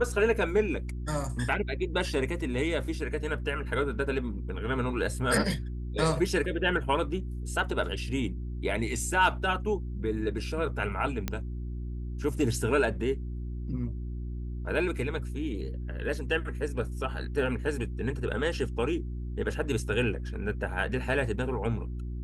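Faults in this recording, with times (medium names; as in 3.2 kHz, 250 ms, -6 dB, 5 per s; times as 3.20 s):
hum 60 Hz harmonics 6 -35 dBFS
11.28 s: pop -15 dBFS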